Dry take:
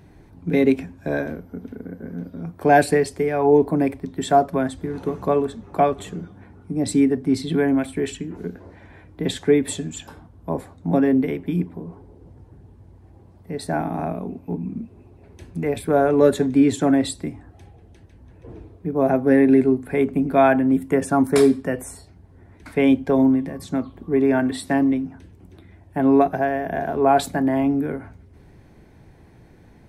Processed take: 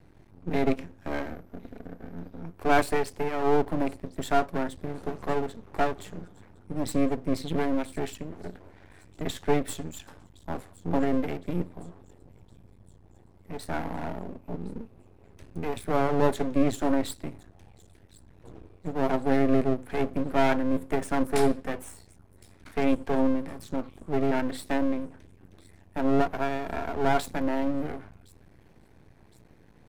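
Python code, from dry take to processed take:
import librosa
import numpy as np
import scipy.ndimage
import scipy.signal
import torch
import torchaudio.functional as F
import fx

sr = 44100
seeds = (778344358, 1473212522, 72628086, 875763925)

y = fx.echo_wet_highpass(x, sr, ms=1063, feedback_pct=54, hz=3900.0, wet_db=-20)
y = np.maximum(y, 0.0)
y = F.gain(torch.from_numpy(y), -3.5).numpy()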